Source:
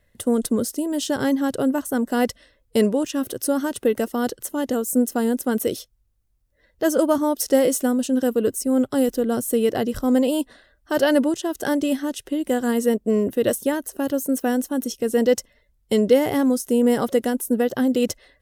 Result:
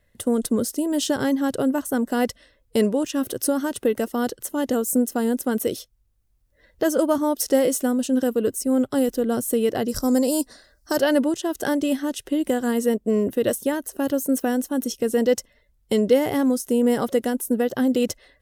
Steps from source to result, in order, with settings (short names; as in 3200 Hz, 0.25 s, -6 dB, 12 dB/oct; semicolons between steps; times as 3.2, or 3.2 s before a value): recorder AGC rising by 5.3 dB/s; 9.88–10.97 resonant high shelf 4000 Hz +7.5 dB, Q 3; gain -1.5 dB